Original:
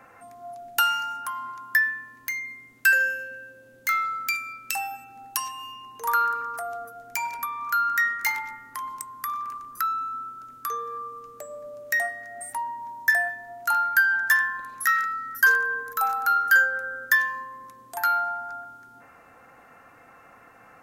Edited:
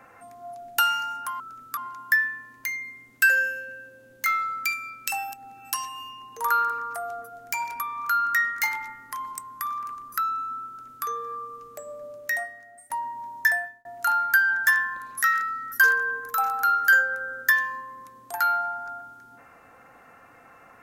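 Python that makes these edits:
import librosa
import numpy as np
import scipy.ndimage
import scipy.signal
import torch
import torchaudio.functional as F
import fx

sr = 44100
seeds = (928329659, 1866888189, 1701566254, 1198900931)

y = fx.edit(x, sr, fx.reverse_span(start_s=4.98, length_s=0.36, crossfade_s=0.06),
    fx.duplicate(start_s=10.31, length_s=0.37, to_s=1.4),
    fx.fade_out_to(start_s=11.7, length_s=0.83, floor_db=-18.0),
    fx.fade_out_span(start_s=13.08, length_s=0.4), tone=tone)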